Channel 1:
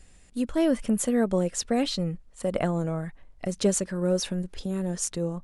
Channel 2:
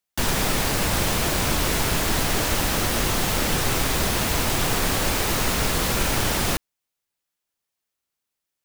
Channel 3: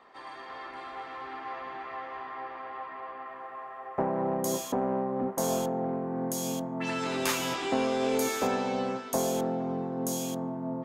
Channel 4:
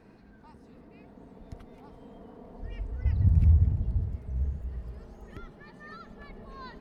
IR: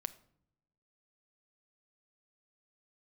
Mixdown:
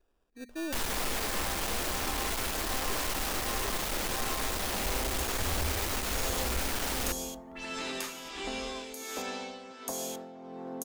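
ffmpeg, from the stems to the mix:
-filter_complex "[0:a]equalizer=f=400:w=0.99:g=12,bandreject=f=60:t=h:w=6,bandreject=f=120:t=h:w=6,bandreject=f=180:t=h:w=6,bandreject=f=240:t=h:w=6,acrusher=samples=21:mix=1:aa=0.000001,volume=-20dB,asplit=2[a][b];[b]volume=-18dB[c];[1:a]adelay=550,volume=3dB[d];[2:a]acrossover=split=240|2200[e][f][g];[e]acompressor=threshold=-47dB:ratio=4[h];[f]acompressor=threshold=-42dB:ratio=4[i];[g]acompressor=threshold=-38dB:ratio=4[j];[h][i][j]amix=inputs=3:normalize=0,adelay=750,volume=0.5dB,asplit=2[k][l];[l]volume=-7dB[m];[3:a]adelay=2150,volume=1.5dB[n];[k][n]amix=inputs=2:normalize=0,tremolo=f=1.4:d=0.84,acompressor=threshold=-31dB:ratio=6,volume=0dB[o];[a][d]amix=inputs=2:normalize=0,aeval=exprs='(tanh(17.8*val(0)+0.4)-tanh(0.4))/17.8':c=same,alimiter=level_in=3dB:limit=-24dB:level=0:latency=1,volume=-3dB,volume=0dB[p];[4:a]atrim=start_sample=2205[q];[c][m]amix=inputs=2:normalize=0[r];[r][q]afir=irnorm=-1:irlink=0[s];[o][p][s]amix=inputs=3:normalize=0,equalizer=f=130:w=1.5:g=-11.5"

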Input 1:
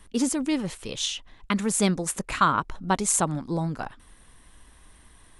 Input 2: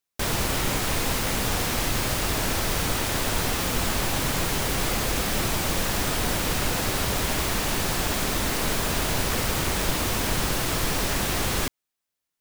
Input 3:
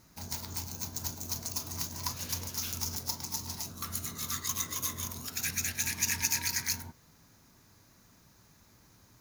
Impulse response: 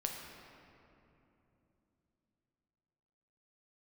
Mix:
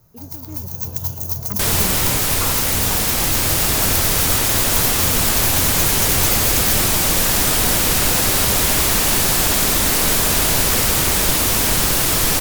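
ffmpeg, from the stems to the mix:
-filter_complex "[0:a]lowpass=1.2k,volume=-16dB[a];[1:a]aemphasis=mode=production:type=cd,adelay=1400,volume=-5dB[b];[2:a]highshelf=f=9.3k:g=10.5,acrossover=split=130[c][d];[d]acompressor=threshold=-29dB:ratio=4[e];[c][e]amix=inputs=2:normalize=0,equalizer=f=125:t=o:w=1:g=11,equalizer=f=250:t=o:w=1:g=-9,equalizer=f=500:t=o:w=1:g=6,equalizer=f=2k:t=o:w=1:g=-7,equalizer=f=4k:t=o:w=1:g=-6,equalizer=f=8k:t=o:w=1:g=-7,volume=1.5dB[f];[a][b][f]amix=inputs=3:normalize=0,dynaudnorm=f=120:g=11:m=12dB"

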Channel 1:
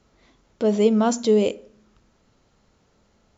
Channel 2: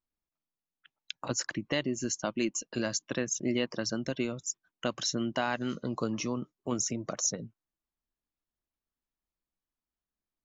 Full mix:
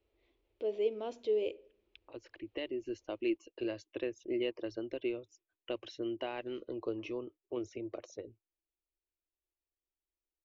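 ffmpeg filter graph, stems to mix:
-filter_complex "[0:a]highshelf=f=3.7k:g=10.5,volume=-16dB,asplit=2[a][b];[1:a]adelay=850,volume=-5dB[c];[b]apad=whole_len=497971[d];[c][d]sidechaincompress=threshold=-44dB:ratio=10:attack=7.4:release=1390[e];[a][e]amix=inputs=2:normalize=0,firequalizer=gain_entry='entry(100,0);entry(150,-27);entry(340,6);entry(710,-4);entry(1400,-12);entry(2500,1);entry(4800,-16);entry(7100,-29)':delay=0.05:min_phase=1"

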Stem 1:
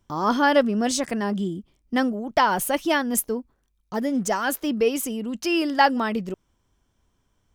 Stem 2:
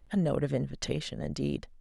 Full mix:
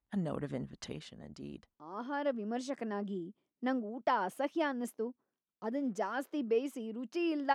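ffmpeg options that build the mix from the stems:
-filter_complex "[0:a]highpass=290,aemphasis=mode=reproduction:type=75fm,adelay=1700,volume=-13dB[a];[1:a]agate=range=-14dB:threshold=-46dB:ratio=16:detection=peak,equalizer=f=125:t=o:w=1:g=-9,equalizer=f=500:t=o:w=1:g=-6,equalizer=f=1k:t=o:w=1:g=6,volume=-8.5dB,afade=t=out:st=0.62:d=0.65:silence=0.446684,asplit=2[b][c];[c]apad=whole_len=407839[d];[a][d]sidechaincompress=threshold=-57dB:ratio=8:attack=16:release=1290[e];[e][b]amix=inputs=2:normalize=0,highpass=88,lowshelf=f=440:g=7"

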